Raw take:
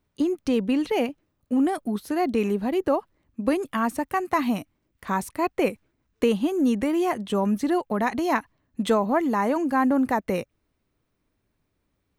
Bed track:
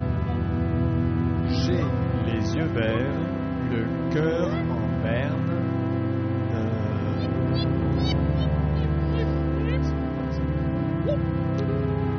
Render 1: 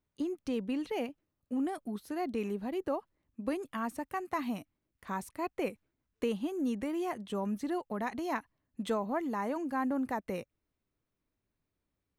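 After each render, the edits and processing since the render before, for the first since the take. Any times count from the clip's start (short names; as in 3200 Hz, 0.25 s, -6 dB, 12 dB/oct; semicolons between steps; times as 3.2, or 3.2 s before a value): gain -11 dB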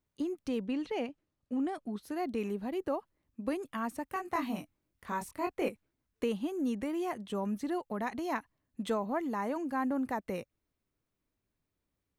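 0.67–2.03 LPF 7000 Hz; 4.07–5.69 doubler 23 ms -3.5 dB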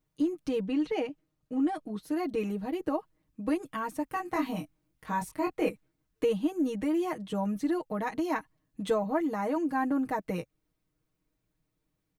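low shelf 390 Hz +4.5 dB; comb 6.4 ms, depth 84%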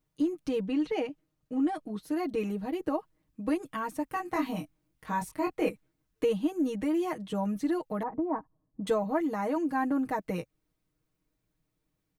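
8.03–8.87 LPF 1100 Hz 24 dB/oct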